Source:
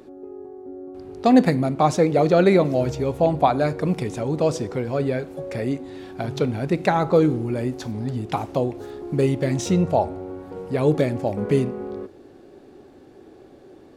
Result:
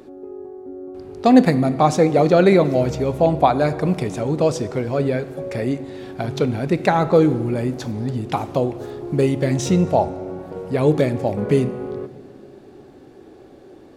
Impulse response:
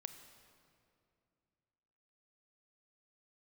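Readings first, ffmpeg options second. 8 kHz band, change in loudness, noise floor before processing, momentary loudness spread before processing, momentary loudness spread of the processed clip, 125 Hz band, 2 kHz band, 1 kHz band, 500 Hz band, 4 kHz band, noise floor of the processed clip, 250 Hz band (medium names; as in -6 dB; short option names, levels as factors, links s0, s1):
+2.5 dB, +2.5 dB, -48 dBFS, 18 LU, 18 LU, +2.5 dB, +2.5 dB, +2.5 dB, +2.5 dB, +2.5 dB, -45 dBFS, +3.0 dB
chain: -filter_complex "[0:a]asplit=2[s0][s1];[1:a]atrim=start_sample=2205[s2];[s1][s2]afir=irnorm=-1:irlink=0,volume=1.19[s3];[s0][s3]amix=inputs=2:normalize=0,volume=0.794"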